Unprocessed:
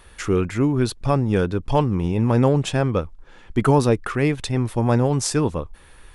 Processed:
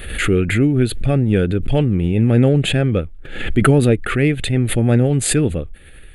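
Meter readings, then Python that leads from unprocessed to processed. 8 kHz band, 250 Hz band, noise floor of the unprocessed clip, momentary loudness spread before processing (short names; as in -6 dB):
+5.5 dB, +4.5 dB, -48 dBFS, 7 LU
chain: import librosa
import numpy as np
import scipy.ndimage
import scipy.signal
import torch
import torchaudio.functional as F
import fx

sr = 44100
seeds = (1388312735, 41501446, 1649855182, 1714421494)

y = fx.fixed_phaser(x, sr, hz=2400.0, stages=4)
y = fx.pre_swell(y, sr, db_per_s=62.0)
y = y * librosa.db_to_amplitude(5.0)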